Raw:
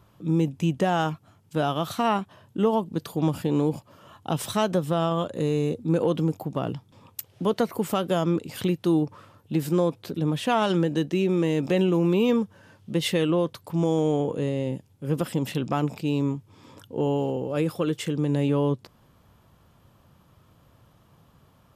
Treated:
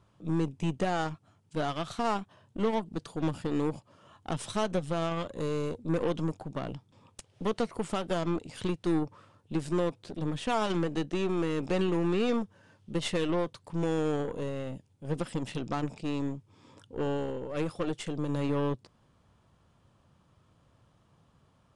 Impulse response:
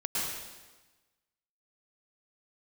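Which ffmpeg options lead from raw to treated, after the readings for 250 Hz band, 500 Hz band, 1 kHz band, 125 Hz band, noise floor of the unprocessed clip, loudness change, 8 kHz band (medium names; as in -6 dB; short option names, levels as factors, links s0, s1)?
-7.0 dB, -6.5 dB, -6.0 dB, -8.0 dB, -59 dBFS, -6.5 dB, -6.0 dB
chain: -af "aeval=exprs='0.299*(cos(1*acos(clip(val(0)/0.299,-1,1)))-cos(1*PI/2))+0.0299*(cos(8*acos(clip(val(0)/0.299,-1,1)))-cos(8*PI/2))':c=same,aresample=22050,aresample=44100,volume=0.447"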